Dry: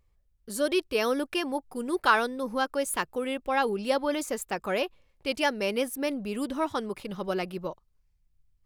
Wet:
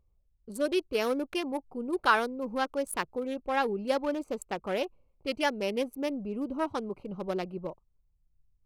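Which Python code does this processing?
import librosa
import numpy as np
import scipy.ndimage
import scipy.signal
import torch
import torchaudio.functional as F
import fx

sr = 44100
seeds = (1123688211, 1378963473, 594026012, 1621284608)

y = fx.wiener(x, sr, points=25)
y = F.gain(torch.from_numpy(y), -1.5).numpy()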